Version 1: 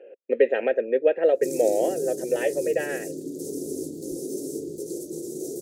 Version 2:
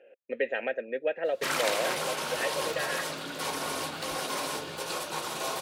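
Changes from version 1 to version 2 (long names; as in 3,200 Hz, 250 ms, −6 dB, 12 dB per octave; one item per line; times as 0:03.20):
background: remove elliptic band-stop filter 370–6,500 Hz, stop band 60 dB
master: add parametric band 390 Hz −14.5 dB 1.3 octaves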